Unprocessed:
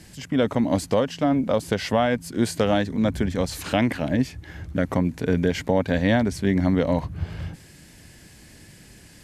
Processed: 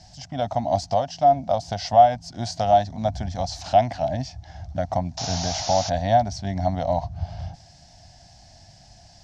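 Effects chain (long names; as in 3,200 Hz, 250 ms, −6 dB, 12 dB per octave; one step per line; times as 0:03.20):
sound drawn into the spectrogram noise, 0:05.17–0:05.90, 310–7,200 Hz −31 dBFS
drawn EQ curve 110 Hz 0 dB, 460 Hz −20 dB, 700 Hz +14 dB, 1,100 Hz −8 dB, 2,400 Hz −11 dB, 5,600 Hz +6 dB, 11,000 Hz −27 dB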